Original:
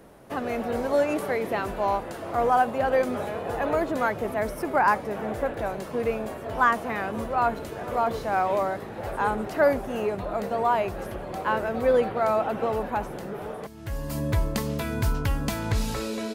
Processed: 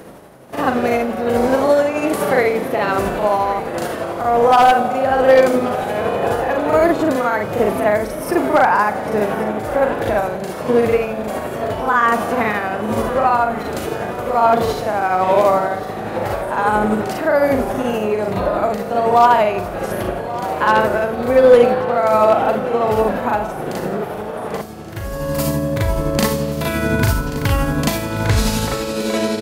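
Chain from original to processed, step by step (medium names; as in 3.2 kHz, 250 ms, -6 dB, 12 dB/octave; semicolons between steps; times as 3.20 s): high-pass 89 Hz 6 dB/octave; in parallel at +1.5 dB: peak limiter -18.5 dBFS, peak gain reduction 9.5 dB; on the sum: granular stretch 1.8×, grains 171 ms; tremolo 1.3 Hz, depth 49%; wavefolder -11.5 dBFS; delay 1132 ms -16 dB; on a send at -14 dB: reverberation RT60 3.0 s, pre-delay 3 ms; on the sum: trim +7.5 dB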